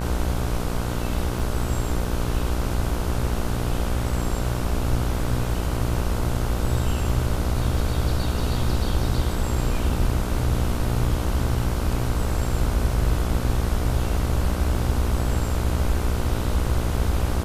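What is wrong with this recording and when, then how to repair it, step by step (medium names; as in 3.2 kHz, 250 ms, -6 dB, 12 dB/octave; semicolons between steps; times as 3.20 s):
buzz 60 Hz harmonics 26 -27 dBFS
1.39 s: dropout 4.7 ms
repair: de-hum 60 Hz, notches 26; interpolate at 1.39 s, 4.7 ms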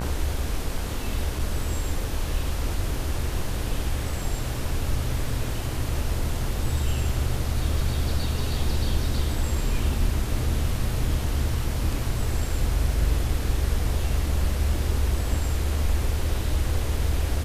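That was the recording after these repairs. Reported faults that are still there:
nothing left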